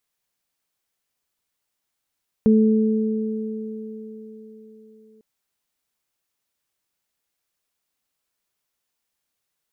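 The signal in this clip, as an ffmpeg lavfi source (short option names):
-f lavfi -i "aevalsrc='0.266*pow(10,-3*t/3.94)*sin(2*PI*218*t)+0.119*pow(10,-3*t/4.91)*sin(2*PI*436*t)':d=2.75:s=44100"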